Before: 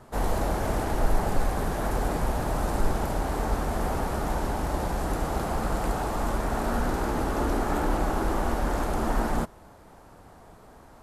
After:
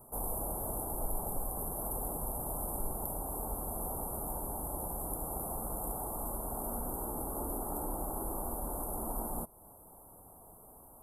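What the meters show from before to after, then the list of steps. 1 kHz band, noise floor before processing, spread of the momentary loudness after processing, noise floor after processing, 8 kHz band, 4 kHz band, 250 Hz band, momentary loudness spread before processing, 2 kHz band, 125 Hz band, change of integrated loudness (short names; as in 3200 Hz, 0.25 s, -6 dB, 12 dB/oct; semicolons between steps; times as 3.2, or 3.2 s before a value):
-11.5 dB, -51 dBFS, 18 LU, -56 dBFS, +1.5 dB, under -40 dB, -13.0 dB, 2 LU, -28.5 dB, -13.5 dB, -8.5 dB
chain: inverse Chebyshev band-stop 2200–5200 Hz, stop band 60 dB; pre-emphasis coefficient 0.9; in parallel at +3 dB: compressor, threshold -54 dBFS, peak gain reduction 17.5 dB; on the sum: gain +4 dB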